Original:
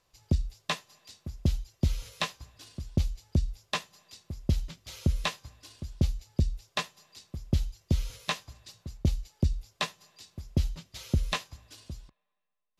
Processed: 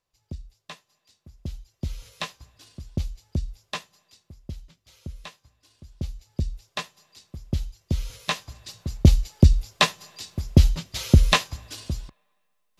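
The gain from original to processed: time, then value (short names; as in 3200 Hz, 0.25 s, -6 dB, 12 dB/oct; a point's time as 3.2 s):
1.17 s -10.5 dB
2.21 s -1 dB
3.79 s -1 dB
4.59 s -11 dB
5.55 s -11 dB
6.47 s 0 dB
7.83 s 0 dB
9.06 s +12 dB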